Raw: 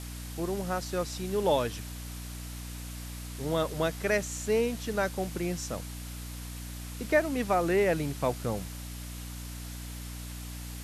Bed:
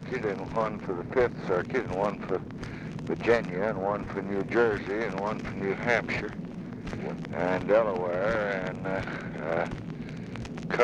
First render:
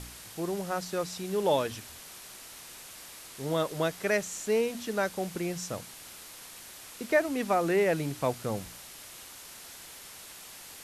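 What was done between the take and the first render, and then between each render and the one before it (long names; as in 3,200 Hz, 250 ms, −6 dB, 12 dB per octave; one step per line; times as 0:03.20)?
hum removal 60 Hz, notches 5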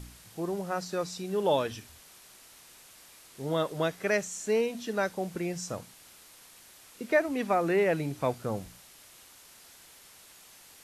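noise reduction from a noise print 7 dB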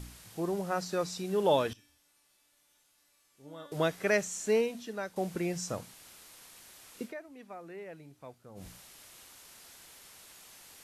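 0:01.73–0:03.72: tuned comb filter 290 Hz, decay 0.89 s, mix 90%
0:04.55–0:05.16: fade out quadratic, to −9.5 dB
0:07.02–0:08.67: duck −19.5 dB, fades 0.12 s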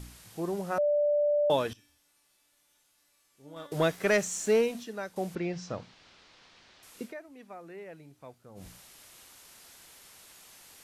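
0:00.78–0:01.50: beep over 588 Hz −22.5 dBFS
0:03.56–0:04.84: leveller curve on the samples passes 1
0:05.35–0:06.83: low-pass filter 4,900 Hz 24 dB per octave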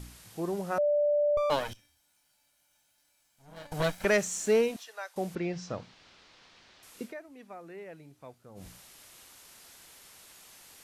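0:01.37–0:04.05: lower of the sound and its delayed copy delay 1.3 ms
0:04.76–0:05.16: high-pass filter 660 Hz 24 dB per octave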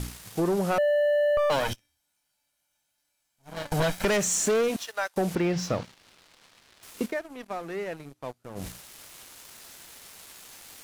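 leveller curve on the samples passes 3
downward compressor, threshold −22 dBFS, peak gain reduction 5 dB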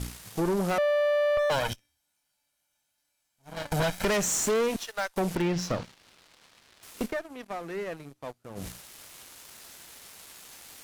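tube saturation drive 22 dB, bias 0.6
in parallel at −11 dB: wrap-around overflow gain 22 dB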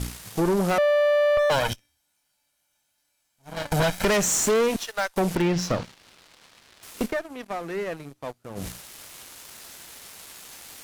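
level +4.5 dB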